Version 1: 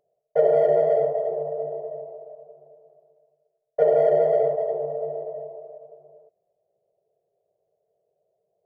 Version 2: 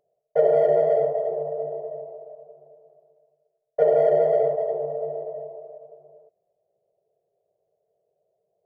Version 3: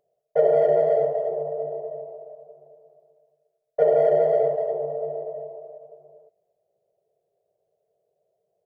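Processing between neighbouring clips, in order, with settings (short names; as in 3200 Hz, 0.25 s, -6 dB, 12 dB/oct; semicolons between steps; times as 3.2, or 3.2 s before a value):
nothing audible
speakerphone echo 0.23 s, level -25 dB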